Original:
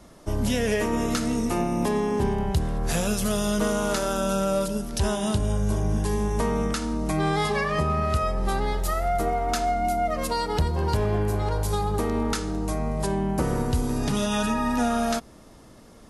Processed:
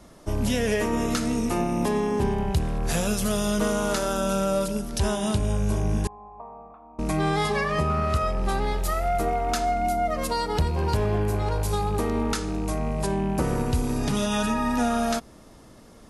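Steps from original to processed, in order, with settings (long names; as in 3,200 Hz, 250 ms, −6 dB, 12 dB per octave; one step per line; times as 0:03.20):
loose part that buzzes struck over −27 dBFS, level −36 dBFS
0:06.07–0:06.99: formant resonators in series a
0:07.90–0:08.53: highs frequency-modulated by the lows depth 0.11 ms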